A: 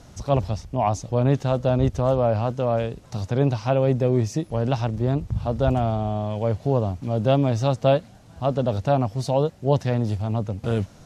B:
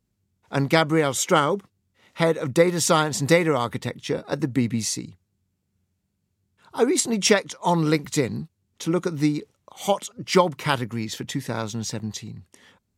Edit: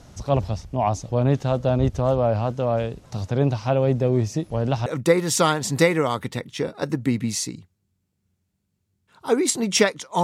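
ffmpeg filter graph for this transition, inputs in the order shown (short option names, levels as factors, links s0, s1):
-filter_complex "[0:a]apad=whole_dur=10.23,atrim=end=10.23,atrim=end=4.862[s0];[1:a]atrim=start=2.358:end=7.73[s1];[s0][s1]acrossfade=d=0.004:c1=hsin:c2=hsin"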